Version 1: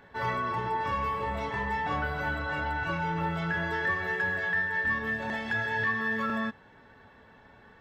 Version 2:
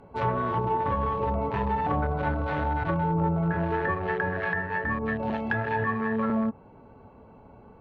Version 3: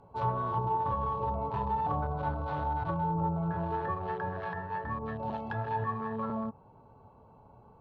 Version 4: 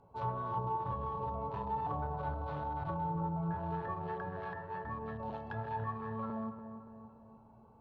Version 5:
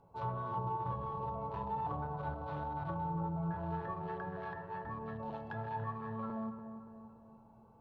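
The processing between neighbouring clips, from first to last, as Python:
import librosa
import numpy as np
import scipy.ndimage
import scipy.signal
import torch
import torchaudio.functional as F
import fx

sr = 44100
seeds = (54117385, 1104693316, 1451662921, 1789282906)

y1 = fx.wiener(x, sr, points=25)
y1 = fx.env_lowpass_down(y1, sr, base_hz=1100.0, full_db=-28.5)
y1 = F.gain(torch.from_numpy(y1), 7.5).numpy()
y2 = fx.graphic_eq_10(y1, sr, hz=(125, 250, 1000, 2000, 4000), db=(6, -4, 8, -11, 4))
y2 = F.gain(torch.from_numpy(y2), -8.0).numpy()
y3 = fx.echo_filtered(y2, sr, ms=287, feedback_pct=56, hz=1600.0, wet_db=-9)
y3 = F.gain(torch.from_numpy(y3), -6.0).numpy()
y4 = fx.room_shoebox(y3, sr, seeds[0], volume_m3=3900.0, walls='furnished', distance_m=0.74)
y4 = F.gain(torch.from_numpy(y4), -1.5).numpy()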